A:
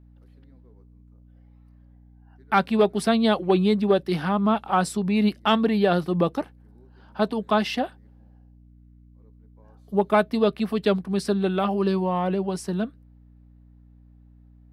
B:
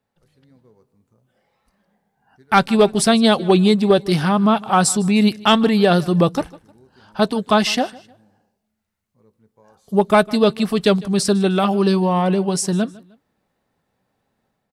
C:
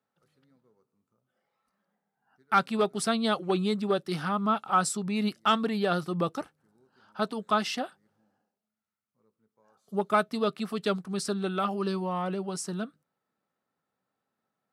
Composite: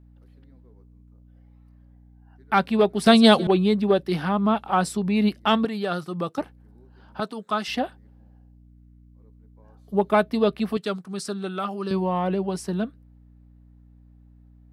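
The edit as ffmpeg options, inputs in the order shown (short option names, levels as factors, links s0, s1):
-filter_complex "[2:a]asplit=3[s0][s1][s2];[0:a]asplit=5[s3][s4][s5][s6][s7];[s3]atrim=end=3.062[s8];[1:a]atrim=start=3.058:end=3.472[s9];[s4]atrim=start=3.468:end=5.652[s10];[s0]atrim=start=5.648:end=6.382[s11];[s5]atrim=start=6.378:end=7.202[s12];[s1]atrim=start=7.198:end=7.682[s13];[s6]atrim=start=7.678:end=10.772[s14];[s2]atrim=start=10.768:end=11.912[s15];[s7]atrim=start=11.908[s16];[s8][s9]acrossfade=d=0.004:c1=hsin:c2=hsin[s17];[s17][s10]acrossfade=d=0.004:c1=hsin:c2=hsin[s18];[s18][s11]acrossfade=d=0.004:c1=hsin:c2=hsin[s19];[s19][s12]acrossfade=d=0.004:c1=hsin:c2=hsin[s20];[s20][s13]acrossfade=d=0.004:c1=hsin:c2=hsin[s21];[s21][s14]acrossfade=d=0.004:c1=hsin:c2=hsin[s22];[s22][s15]acrossfade=d=0.004:c1=hsin:c2=hsin[s23];[s23][s16]acrossfade=d=0.004:c1=hsin:c2=hsin"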